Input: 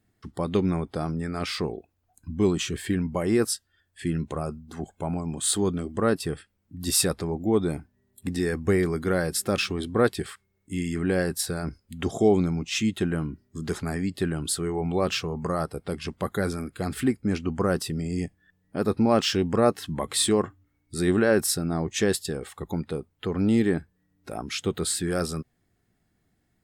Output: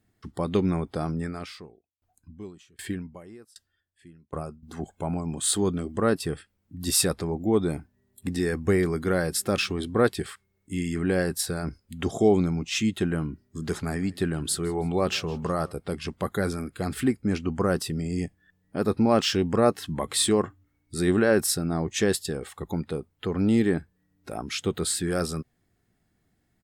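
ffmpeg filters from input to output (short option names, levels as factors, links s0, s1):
-filter_complex "[0:a]asettb=1/sr,asplit=3[s0][s1][s2];[s0]atrim=end=1.254[s3];[s1]atrim=start=1.25:end=4.63,asetpts=PTS-STARTPTS,afade=t=in:d=0.004:c=qsin,afade=t=out:st=3.376:d=0.004:c=qsin,aeval=exprs='val(0)*pow(10,-33*if(lt(mod(1.3*n/s,1),2*abs(1.3)/1000),1-mod(1.3*n/s,1)/(2*abs(1.3)/1000),(mod(1.3*n/s,1)-2*abs(1.3)/1000)/(1-2*abs(1.3)/1000))/20)':c=same[s4];[s2]atrim=start=4.626[s5];[s3][s4]acrossfade=d=0.004:c1=hsin:c2=qsin[s6];[s6][s5]acrossfade=d=0.004:c1=qsin:c2=hsin,asplit=3[s7][s8][s9];[s7]afade=t=out:st=13.6:d=0.02[s10];[s8]aecho=1:1:162|324|486:0.0708|0.0311|0.0137,afade=t=in:st=13.6:d=0.02,afade=t=out:st=15.71:d=0.02[s11];[s9]afade=t=in:st=15.71:d=0.02[s12];[s10][s11][s12]amix=inputs=3:normalize=0"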